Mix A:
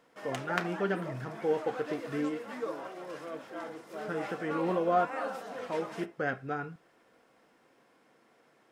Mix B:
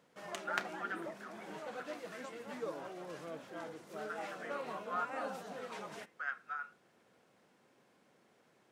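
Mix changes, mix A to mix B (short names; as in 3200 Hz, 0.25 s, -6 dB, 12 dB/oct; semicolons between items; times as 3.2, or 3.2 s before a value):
speech: add ladder high-pass 1100 Hz, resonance 55%; background: send off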